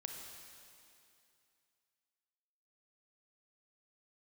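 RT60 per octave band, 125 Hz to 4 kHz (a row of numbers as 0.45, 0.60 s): 2.6, 2.6, 2.6, 2.6, 2.6, 2.5 s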